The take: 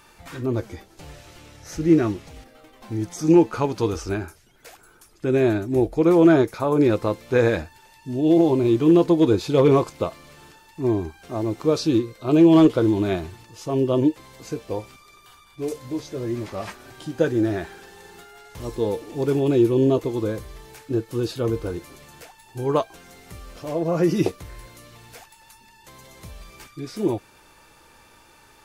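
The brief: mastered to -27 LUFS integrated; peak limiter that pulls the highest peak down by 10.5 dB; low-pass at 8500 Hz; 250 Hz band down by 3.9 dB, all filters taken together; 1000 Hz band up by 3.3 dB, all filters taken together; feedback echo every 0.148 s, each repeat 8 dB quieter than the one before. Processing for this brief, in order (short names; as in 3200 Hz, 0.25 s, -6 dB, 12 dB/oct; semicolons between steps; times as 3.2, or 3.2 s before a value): LPF 8500 Hz; bell 250 Hz -6.5 dB; bell 1000 Hz +4.5 dB; limiter -17 dBFS; feedback echo 0.148 s, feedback 40%, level -8 dB; gain +0.5 dB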